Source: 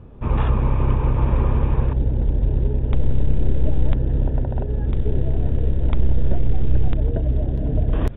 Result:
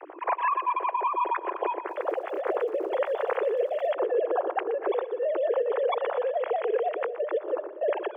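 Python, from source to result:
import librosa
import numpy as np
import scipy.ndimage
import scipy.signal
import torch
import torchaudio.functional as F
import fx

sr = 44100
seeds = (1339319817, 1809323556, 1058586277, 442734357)

y = fx.sine_speech(x, sr)
y = fx.high_shelf(y, sr, hz=2100.0, db=-10.0)
y = fx.over_compress(y, sr, threshold_db=-19.0, ratio=-0.5)
y = scipy.signal.sosfilt(scipy.signal.butter(16, 340.0, 'highpass', fs=sr, output='sos'), y)
y = fx.echo_feedback(y, sr, ms=121, feedback_pct=48, wet_db=-14.0)
y = fx.dmg_crackle(y, sr, seeds[0], per_s=220.0, level_db=-43.0, at=(1.88, 3.93), fade=0.02)
y = y * 10.0 ** (-7.5 / 20.0)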